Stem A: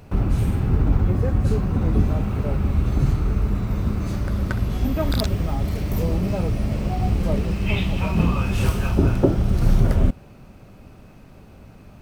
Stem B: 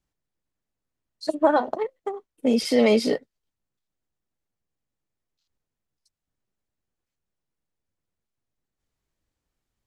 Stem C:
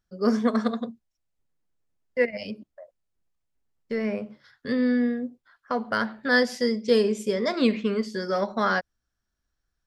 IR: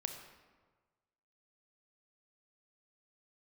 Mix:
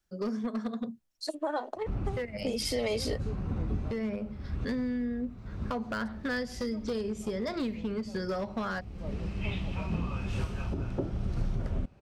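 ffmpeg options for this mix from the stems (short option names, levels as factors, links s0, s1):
-filter_complex "[0:a]lowpass=6700,adelay=1750,volume=0.266[s0];[1:a]highpass=f=260:w=0.5412,highpass=f=260:w=1.3066,highshelf=f=3600:g=7.5,volume=0.562[s1];[2:a]adynamicequalizer=threshold=0.0126:dfrequency=160:dqfactor=0.86:tfrequency=160:tqfactor=0.86:attack=5:release=100:ratio=0.375:range=3:mode=boostabove:tftype=bell,acompressor=threshold=0.0355:ratio=12,asoftclip=type=hard:threshold=0.0447,volume=1,asplit=2[s2][s3];[s3]apad=whole_len=606991[s4];[s0][s4]sidechaincompress=threshold=0.00355:ratio=4:attack=16:release=325[s5];[s5][s1][s2]amix=inputs=3:normalize=0,alimiter=limit=0.0841:level=0:latency=1:release=309"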